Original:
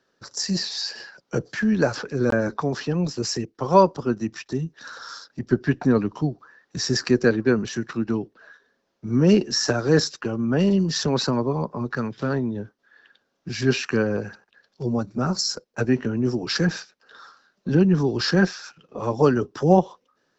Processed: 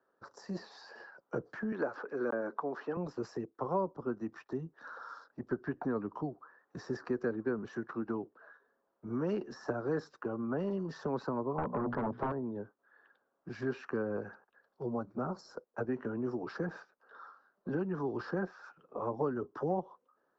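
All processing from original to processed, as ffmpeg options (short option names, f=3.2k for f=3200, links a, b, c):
-filter_complex "[0:a]asettb=1/sr,asplit=3[a][b][c];[a]atrim=end=1.724[d];[b]atrim=start=1.72:end=2.97,asetpts=PTS-STARTPTS,afade=t=in:d=0.004:c=qsin,afade=t=out:st=1.246:d=0.004:c=qsin,highpass=290,equalizer=f=2.1k:w=0.61:g=6[e];[c]atrim=start=2.966[f];[d][e]acrossfade=d=0.004:c1=hsin:c2=qsin[g];[g][f]acrossfade=d=0.004:c1=qsin:c2=hsin,asettb=1/sr,asplit=3[h][i][j];[h]atrim=end=11.584[k];[i]atrim=start=11.58:end=12.32,asetpts=PTS-STARTPTS,afade=t=in:d=0.004:c=qsin,afade=t=out:st=0.736:d=0.004:c=qsin,lowpass=f=1.1k:p=1,bandreject=f=60:t=h:w=6,bandreject=f=120:t=h:w=6,bandreject=f=180:t=h:w=6,bandreject=f=240:t=h:w=6,aeval=exprs='0.178*sin(PI/2*3.98*val(0)/0.178)':c=same[l];[j]atrim=start=12.316[m];[k][l]acrossfade=d=0.004:c1=hsin:c2=qsin[n];[n][m]acrossfade=d=0.004:c1=qsin:c2=hsin,highshelf=f=1.7k:t=q:w=1.5:g=-10.5,acrossover=split=330|980[o][p][q];[o]acompressor=threshold=-24dB:ratio=4[r];[p]acompressor=threshold=-32dB:ratio=4[s];[q]acompressor=threshold=-40dB:ratio=4[t];[r][s][t]amix=inputs=3:normalize=0,bass=f=250:g=-11,treble=f=4k:g=-14,volume=-5dB"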